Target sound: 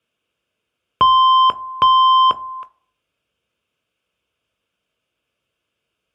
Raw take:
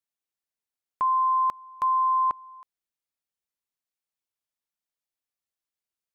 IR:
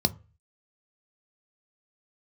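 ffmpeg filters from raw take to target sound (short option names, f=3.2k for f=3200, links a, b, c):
-filter_complex "[0:a]asplit=2[a][b];[b]highpass=f=720:p=1,volume=12dB,asoftclip=type=tanh:threshold=-19dB[c];[a][c]amix=inputs=2:normalize=0,lowpass=f=1.3k:p=1,volume=-6dB[d];[1:a]atrim=start_sample=2205,afade=t=out:st=0.28:d=0.01,atrim=end_sample=12789,asetrate=27342,aresample=44100[e];[d][e]afir=irnorm=-1:irlink=0,volume=5dB"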